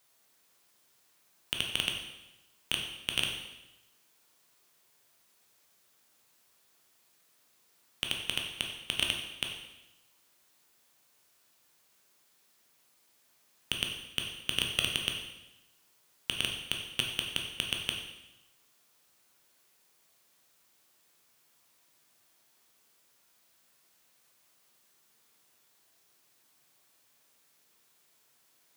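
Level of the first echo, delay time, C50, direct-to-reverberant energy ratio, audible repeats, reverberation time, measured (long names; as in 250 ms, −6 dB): no echo audible, no echo audible, 4.5 dB, 1.0 dB, no echo audible, 1.0 s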